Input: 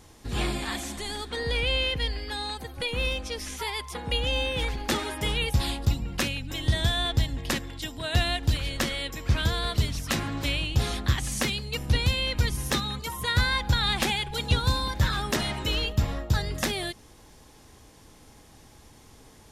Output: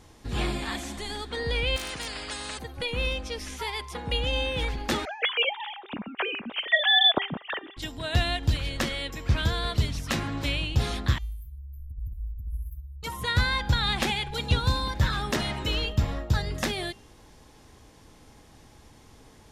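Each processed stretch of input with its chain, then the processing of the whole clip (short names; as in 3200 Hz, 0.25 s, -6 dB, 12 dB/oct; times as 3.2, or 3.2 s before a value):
1.76–2.59 brick-wall FIR low-pass 10000 Hz + hard clip -18.5 dBFS + spectral compressor 4:1
5.05–7.77 sine-wave speech + three-band expander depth 40%
11.18–13.03 inverse Chebyshev band-stop 220–6500 Hz, stop band 60 dB + negative-ratio compressor -30 dBFS, ratio -0.5
whole clip: high shelf 7500 Hz -7.5 dB; de-hum 396.9 Hz, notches 18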